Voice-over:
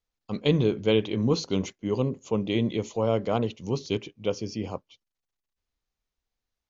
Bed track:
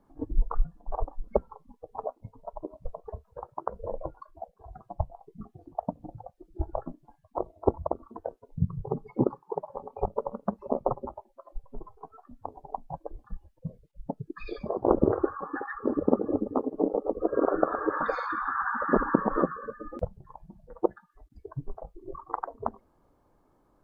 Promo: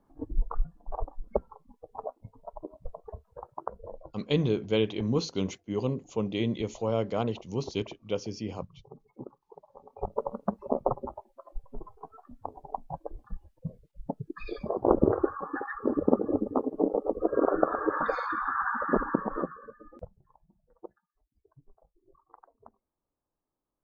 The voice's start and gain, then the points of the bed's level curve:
3.85 s, -3.5 dB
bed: 3.66 s -3 dB
4.33 s -18.5 dB
9.6 s -18.5 dB
10.2 s 0 dB
18.69 s 0 dB
21.16 s -22.5 dB

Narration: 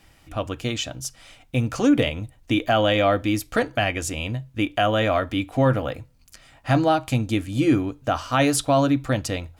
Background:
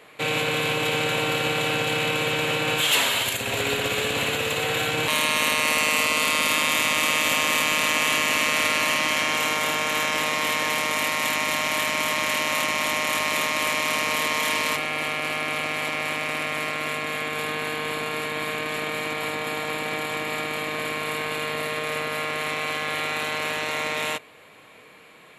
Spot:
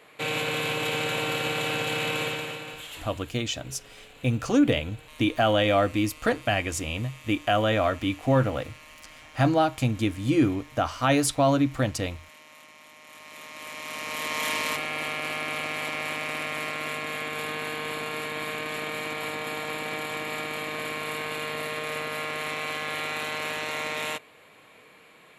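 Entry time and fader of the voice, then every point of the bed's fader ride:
2.70 s, -2.5 dB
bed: 2.23 s -4 dB
3.15 s -26.5 dB
12.95 s -26.5 dB
14.44 s -4 dB

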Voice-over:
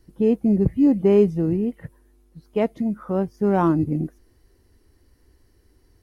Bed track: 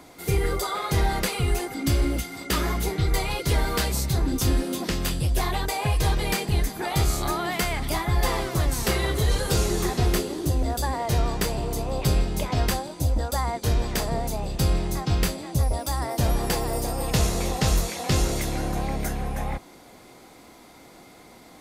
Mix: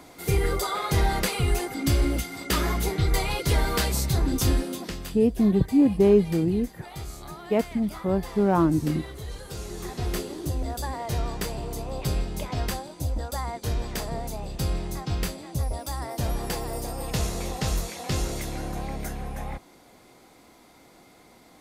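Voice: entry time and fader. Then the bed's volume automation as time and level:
4.95 s, -2.0 dB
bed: 4.51 s 0 dB
5.29 s -14.5 dB
9.53 s -14.5 dB
10.21 s -5 dB

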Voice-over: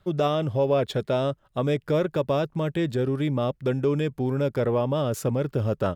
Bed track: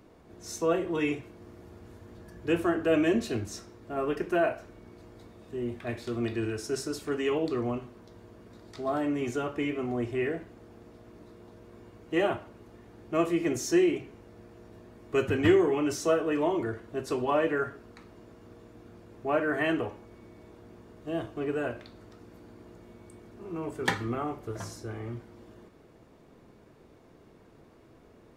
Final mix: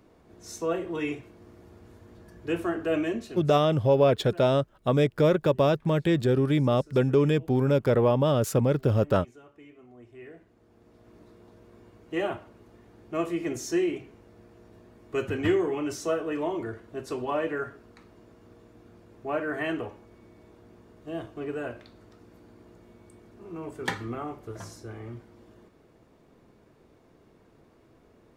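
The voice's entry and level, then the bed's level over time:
3.30 s, +2.0 dB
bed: 2.98 s -2 dB
3.91 s -20.5 dB
9.95 s -20.5 dB
11.14 s -2.5 dB

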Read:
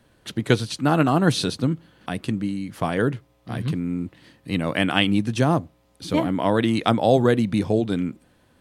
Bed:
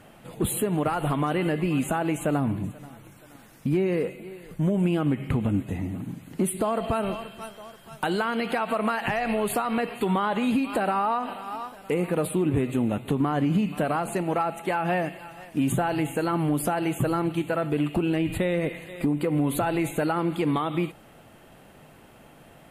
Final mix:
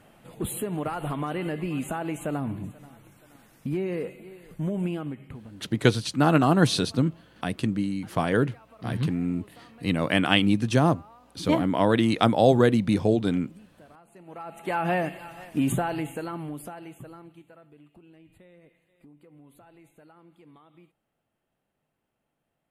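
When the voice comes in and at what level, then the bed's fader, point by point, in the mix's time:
5.35 s, -1.0 dB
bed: 4.87 s -5 dB
5.78 s -27 dB
14.08 s -27 dB
14.77 s 0 dB
15.68 s 0 dB
17.78 s -29 dB

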